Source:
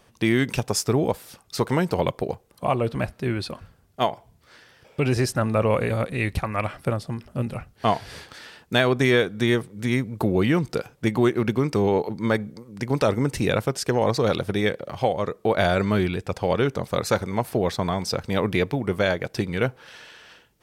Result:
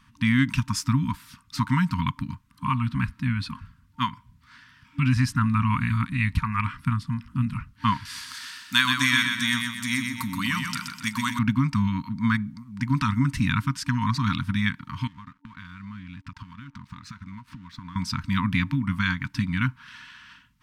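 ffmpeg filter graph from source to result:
-filter_complex "[0:a]asettb=1/sr,asplit=3[a][b][c];[a]atrim=end=8.054[d];[b]atrim=start=8.05:end=11.39,asetpts=PTS-STARTPTS,afade=t=in:d=0.004:c=qsin,afade=t=out:st=3.336:d=0.004:c=qsin,bass=f=250:g=-15,treble=f=4k:g=15,aecho=1:1:126|252|378|504|630|756:0.562|0.259|0.119|0.0547|0.0252|0.0116,atrim=end_sample=147294[e];[c]atrim=start=11.386[f];[d][e]acrossfade=d=0.004:c1=hsin:c2=qsin[g];[g][f]acrossfade=d=0.004:c1=qsin:c2=hsin,asettb=1/sr,asplit=3[h][i][j];[h]atrim=end=15.074[k];[i]atrim=start=15.07:end=17.96,asetpts=PTS-STARTPTS,afade=t=in:d=0.004:c=qsin,afade=t=out:st=2.886:d=0.004:c=qsin,lowpass=6k,acompressor=threshold=-34dB:ratio=20:attack=3.2:release=140:knee=1:detection=peak,aeval=exprs='sgn(val(0))*max(abs(val(0))-0.00178,0)':c=same[l];[j]atrim=start=17.956[m];[k][l]acrossfade=d=0.004:c1=hsin:c2=qsin[n];[n][m]acrossfade=d=0.004:c1=qsin:c2=hsin,afftfilt=real='re*(1-between(b*sr/4096,280,910))':imag='im*(1-between(b*sr/4096,280,910))':win_size=4096:overlap=0.75,highshelf=f=4.6k:g=-11.5,volume=2.5dB"

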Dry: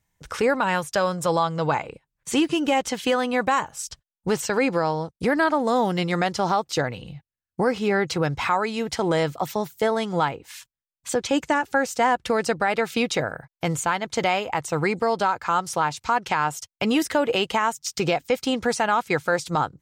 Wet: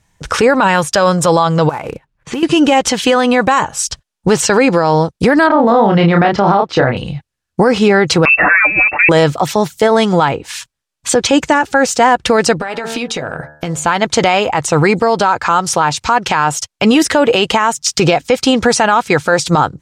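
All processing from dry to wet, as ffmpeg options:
-filter_complex "[0:a]asettb=1/sr,asplit=3[a][b][c];[a]atrim=end=1.694[d];[b]atrim=start=1.69:end=2.43,asetpts=PTS-STARTPTS,afade=t=in:d=0.004:c=qsin,afade=t=out:st=0.736:d=0.004:c=qsin,lowpass=2.6k,acompressor=threshold=-32dB:ratio=20:attack=3.2:release=140:knee=1:detection=peak,acrusher=bits=5:mode=log:mix=0:aa=0.000001[e];[c]atrim=start=2.426[f];[d][e]acrossfade=d=0.004:c1=hsin:c2=qsin[g];[g][f]acrossfade=d=0.004:c1=qsin:c2=hsin,asettb=1/sr,asplit=3[h][i][j];[h]atrim=end=5.474[k];[i]atrim=start=5.47:end=6.97,asetpts=PTS-STARTPTS,afade=t=in:d=0.004:c=qsin,afade=t=out:st=1.496:d=0.004:c=qsin,lowpass=2.3k,asplit=2[l][m];[m]adelay=30,volume=-4dB[n];[l][n]amix=inputs=2:normalize=0,atrim=end_sample=66150[o];[j]atrim=start=6.966[p];[k][o]acrossfade=d=0.004:c1=hsin:c2=qsin[q];[q][p]acrossfade=d=0.004:c1=qsin:c2=hsin,asettb=1/sr,asplit=3[r][s][t];[r]atrim=end=8.254[u];[s]atrim=start=8.25:end=9.09,asetpts=PTS-STARTPTS,afade=t=in:d=0.004:c=qsin,afade=t=out:st=0.836:d=0.004:c=qsin,aecho=1:1:7.3:0.91,atrim=end_sample=37044,lowpass=f=2.4k:t=q:w=0.5098,lowpass=f=2.4k:t=q:w=0.6013,lowpass=f=2.4k:t=q:w=0.9,lowpass=f=2.4k:t=q:w=2.563,afreqshift=-2800[v];[t]atrim=start=9.086[w];[u][v]acrossfade=d=0.004:c1=hsin:c2=qsin[x];[x][w]acrossfade=d=0.004:c1=qsin:c2=hsin,asettb=1/sr,asplit=3[y][z][aa];[y]atrim=end=12.584[ab];[z]atrim=start=12.58:end=13.85,asetpts=PTS-STARTPTS,afade=t=in:d=0.004:c=qsin,afade=t=out:st=1.266:d=0.004:c=qsin,bandreject=f=75.6:t=h:w=4,bandreject=f=151.2:t=h:w=4,bandreject=f=226.8:t=h:w=4,bandreject=f=302.4:t=h:w=4,bandreject=f=378:t=h:w=4,bandreject=f=453.6:t=h:w=4,bandreject=f=529.2:t=h:w=4,bandreject=f=604.8:t=h:w=4,bandreject=f=680.4:t=h:w=4,bandreject=f=756:t=h:w=4,bandreject=f=831.6:t=h:w=4,bandreject=f=907.2:t=h:w=4,bandreject=f=982.8:t=h:w=4,bandreject=f=1.0584k:t=h:w=4,bandreject=f=1.134k:t=h:w=4,bandreject=f=1.2096k:t=h:w=4,bandreject=f=1.2852k:t=h:w=4,bandreject=f=1.3608k:t=h:w=4,bandreject=f=1.4364k:t=h:w=4,bandreject=f=1.512k:t=h:w=4,bandreject=f=1.5876k:t=h:w=4,bandreject=f=1.6632k:t=h:w=4,bandreject=f=1.7388k:t=h:w=4,bandreject=f=1.8144k:t=h:w=4,acompressor=threshold=-32dB:ratio=16:attack=3.2:release=140:knee=1:detection=peak,asplit=2[ac][ad];[ad]adelay=12,volume=-10.5dB[ae];[ac][ae]amix=inputs=2:normalize=0,atrim=end_sample=56007[af];[aa]atrim=start=13.846[ag];[ab][af]acrossfade=d=0.004:c1=hsin:c2=qsin[ah];[ah][ag]acrossfade=d=0.004:c1=qsin:c2=hsin,lowpass=9.6k,bandreject=f=2.1k:w=25,alimiter=level_in=17dB:limit=-1dB:release=50:level=0:latency=1,volume=-1dB"

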